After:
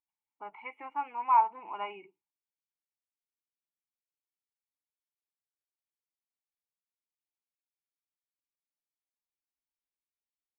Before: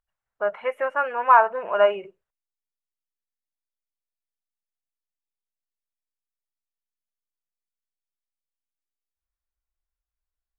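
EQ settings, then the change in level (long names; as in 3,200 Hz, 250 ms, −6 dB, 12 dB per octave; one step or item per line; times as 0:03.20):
formant filter u
parametric band 350 Hz −7 dB 1.8 octaves
+5.5 dB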